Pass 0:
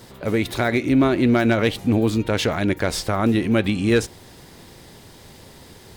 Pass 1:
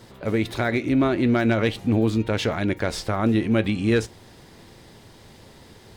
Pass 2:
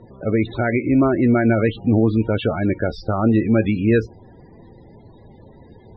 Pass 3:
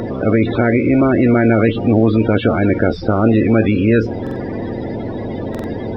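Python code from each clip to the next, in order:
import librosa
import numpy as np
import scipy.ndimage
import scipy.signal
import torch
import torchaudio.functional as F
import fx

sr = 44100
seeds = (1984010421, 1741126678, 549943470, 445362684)

y1 = fx.high_shelf(x, sr, hz=8000.0, db=-8.5)
y1 = fx.comb_fb(y1, sr, f0_hz=110.0, decay_s=0.16, harmonics='all', damping=0.0, mix_pct=40)
y2 = fx.spec_topn(y1, sr, count=32)
y2 = fx.air_absorb(y2, sr, metres=180.0)
y2 = y2 * 10.0 ** (4.5 / 20.0)
y3 = fx.bin_compress(y2, sr, power=0.4)
y3 = fx.buffer_glitch(y3, sr, at_s=(4.22, 5.5), block=2048, repeats=2)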